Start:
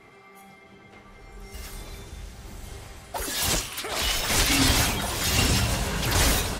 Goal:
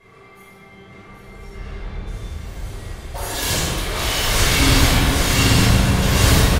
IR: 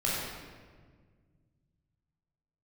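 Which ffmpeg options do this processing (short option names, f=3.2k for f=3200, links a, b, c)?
-filter_complex "[0:a]asplit=3[a][b][c];[a]afade=t=out:st=1.49:d=0.02[d];[b]lowpass=2.8k,afade=t=in:st=1.49:d=0.02,afade=t=out:st=2.06:d=0.02[e];[c]afade=t=in:st=2.06:d=0.02[f];[d][e][f]amix=inputs=3:normalize=0,aecho=1:1:782:0.501[g];[1:a]atrim=start_sample=2205,asetrate=37044,aresample=44100[h];[g][h]afir=irnorm=-1:irlink=0,volume=-4.5dB"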